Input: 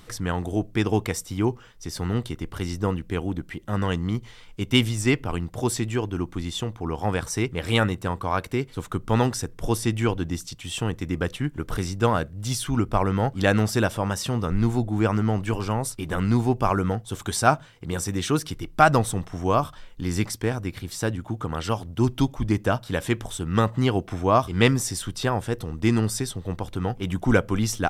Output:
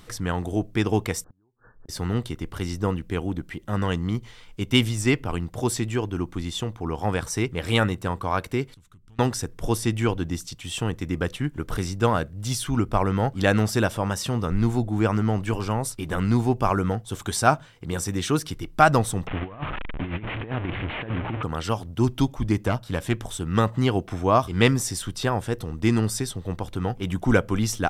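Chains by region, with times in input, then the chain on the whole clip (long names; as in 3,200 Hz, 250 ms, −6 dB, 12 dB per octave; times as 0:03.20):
0:01.24–0:01.89: linear-phase brick-wall low-pass 1,800 Hz + downward compressor 3 to 1, threshold −37 dBFS + gate with flip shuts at −36 dBFS, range −32 dB
0:08.74–0:09.19: guitar amp tone stack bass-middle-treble 6-0-2 + downward compressor 5 to 1, threshold −48 dBFS + highs frequency-modulated by the lows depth 0.19 ms
0:19.27–0:21.43: linear delta modulator 16 kbit/s, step −27 dBFS + compressor whose output falls as the input rises −28 dBFS, ratio −0.5
0:22.67–0:23.21: tube saturation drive 13 dB, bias 0.6 + low-shelf EQ 200 Hz +4.5 dB
whole clip: no processing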